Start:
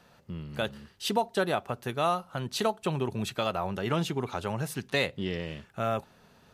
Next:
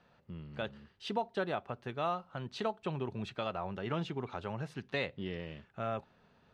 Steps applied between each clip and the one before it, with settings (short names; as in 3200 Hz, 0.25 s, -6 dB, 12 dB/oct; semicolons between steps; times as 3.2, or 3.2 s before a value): LPF 3600 Hz 12 dB/oct; gain -7 dB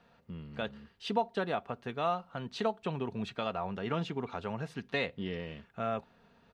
comb 4.3 ms, depth 31%; gain +2 dB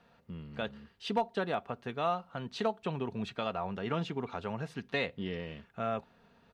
one-sided clip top -23 dBFS, bottom -19 dBFS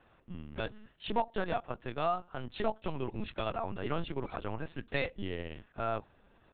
LPC vocoder at 8 kHz pitch kept